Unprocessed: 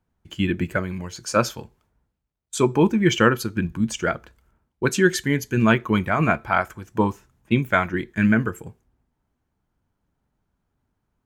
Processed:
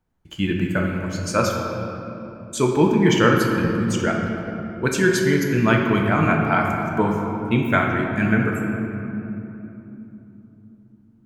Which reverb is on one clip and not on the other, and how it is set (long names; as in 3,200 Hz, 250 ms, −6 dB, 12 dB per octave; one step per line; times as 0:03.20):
rectangular room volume 160 cubic metres, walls hard, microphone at 0.43 metres
level −1 dB